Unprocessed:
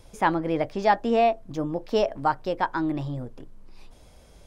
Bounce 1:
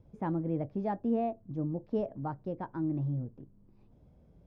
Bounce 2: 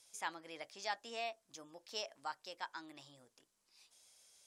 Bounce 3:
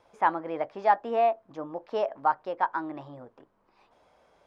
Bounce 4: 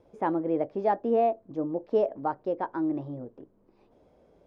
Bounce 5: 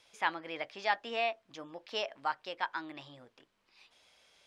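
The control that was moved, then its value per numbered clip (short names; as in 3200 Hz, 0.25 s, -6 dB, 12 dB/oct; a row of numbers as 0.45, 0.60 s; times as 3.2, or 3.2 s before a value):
band-pass, frequency: 150, 7700, 1000, 400, 2900 Hz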